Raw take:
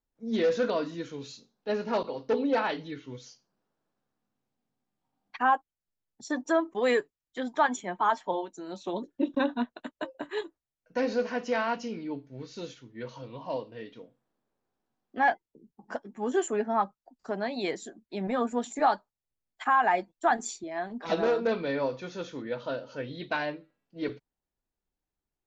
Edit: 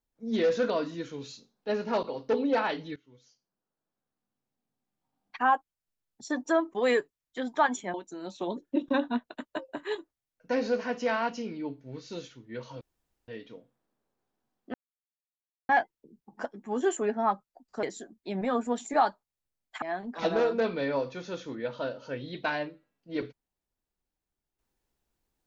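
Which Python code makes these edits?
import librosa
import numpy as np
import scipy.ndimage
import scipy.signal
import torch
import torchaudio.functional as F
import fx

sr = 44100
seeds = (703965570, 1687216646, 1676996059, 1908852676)

y = fx.edit(x, sr, fx.fade_in_from(start_s=2.96, length_s=2.58, floor_db=-20.0),
    fx.cut(start_s=7.94, length_s=0.46),
    fx.room_tone_fill(start_s=13.27, length_s=0.47),
    fx.insert_silence(at_s=15.2, length_s=0.95),
    fx.cut(start_s=17.34, length_s=0.35),
    fx.cut(start_s=19.68, length_s=1.01), tone=tone)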